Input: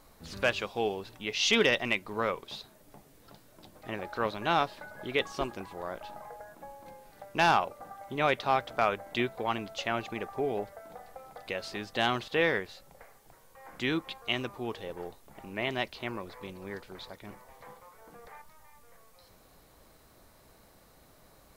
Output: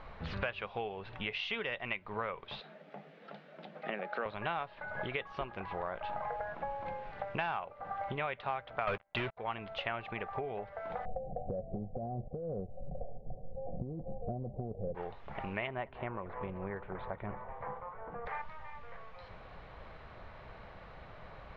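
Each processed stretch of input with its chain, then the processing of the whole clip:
2.60–4.26 s: rippled Chebyshev high-pass 150 Hz, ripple 3 dB + peaking EQ 1 kHz -11 dB 0.34 oct
8.87–9.37 s: gate -39 dBFS, range -14 dB + waveshaping leveller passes 5
11.05–14.95 s: rippled Chebyshev low-pass 760 Hz, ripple 6 dB + tilt EQ -2.5 dB/octave + compressor with a negative ratio -36 dBFS
15.67–18.26 s: low-pass 1.3 kHz + feedback delay 188 ms, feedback 58%, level -23 dB
whole clip: compression 8:1, threshold -43 dBFS; low-pass 2.9 kHz 24 dB/octave; peaking EQ 290 Hz -10.5 dB 1 oct; trim +11 dB

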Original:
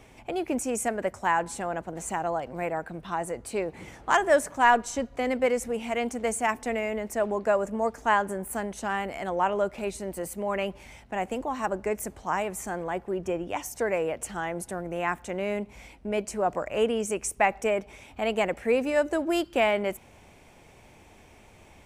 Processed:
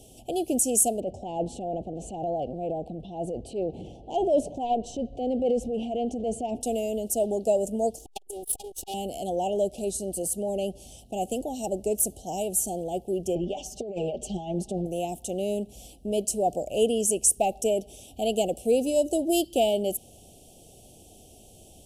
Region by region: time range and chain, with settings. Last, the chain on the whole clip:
1.00–6.61 s: low-pass 2.1 kHz + transient shaper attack -6 dB, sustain +6 dB + transformer saturation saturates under 430 Hz
7.98–8.94 s: comb filter that takes the minimum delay 2.4 ms + peaking EQ 130 Hz -8 dB 1.3 oct + transformer saturation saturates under 1.6 kHz
9.69–10.99 s: low-pass 11 kHz + dynamic bell 2.8 kHz, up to -5 dB, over -49 dBFS, Q 1.4
13.35–14.86 s: distance through air 170 m + comb 5 ms, depth 95% + compressor with a negative ratio -31 dBFS
whole clip: Chebyshev band-stop 750–2900 Hz, order 4; peaking EQ 11 kHz +14.5 dB 1 oct; trim +2 dB

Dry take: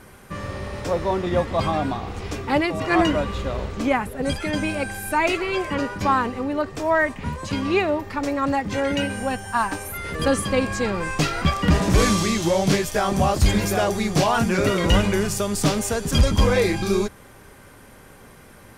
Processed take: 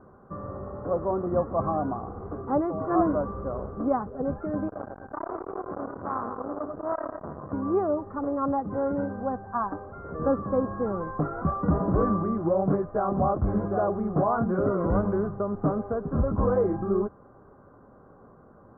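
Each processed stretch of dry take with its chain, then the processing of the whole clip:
4.68–7.53 s: two-band feedback delay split 1.7 kHz, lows 107 ms, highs 156 ms, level -7.5 dB + transformer saturation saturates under 2.2 kHz
whole clip: steep low-pass 1.3 kHz 48 dB/octave; bass shelf 85 Hz -10.5 dB; band-stop 910 Hz, Q 8.4; trim -3 dB

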